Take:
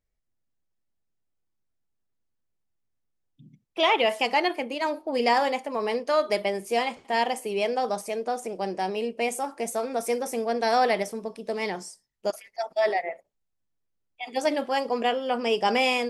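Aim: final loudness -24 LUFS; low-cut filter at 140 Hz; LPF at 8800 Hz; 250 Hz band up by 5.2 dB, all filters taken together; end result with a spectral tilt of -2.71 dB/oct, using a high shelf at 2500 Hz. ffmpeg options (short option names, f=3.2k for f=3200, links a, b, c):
-af "highpass=140,lowpass=8.8k,equalizer=f=250:t=o:g=6.5,highshelf=f=2.5k:g=-7,volume=2.5dB"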